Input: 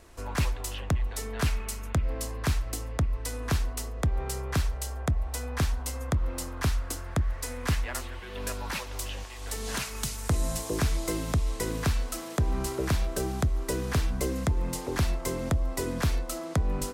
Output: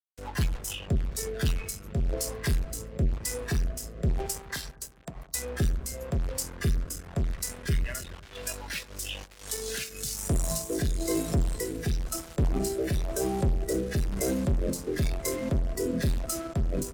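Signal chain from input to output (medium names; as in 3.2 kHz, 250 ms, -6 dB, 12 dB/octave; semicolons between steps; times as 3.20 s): peak limiter -21.5 dBFS, peak gain reduction 3.5 dB; 4.26–5.35 s: peaking EQ 77 Hz -13 dB 2 oct; gate -28 dBFS, range -14 dB; fuzz box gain 49 dB, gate -51 dBFS; upward compressor, threshold -22 dBFS; spectral noise reduction 11 dB; rotary cabinet horn 6.7 Hz, later 1 Hz, at 0.80 s; bucket-brigade echo 104 ms, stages 1024, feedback 71%, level -17.5 dB; trim -7.5 dB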